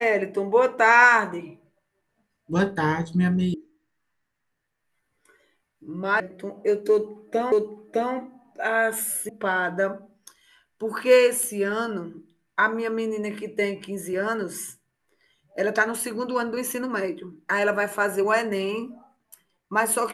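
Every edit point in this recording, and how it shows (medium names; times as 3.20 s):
3.54 s: sound stops dead
6.20 s: sound stops dead
7.52 s: repeat of the last 0.61 s
9.29 s: sound stops dead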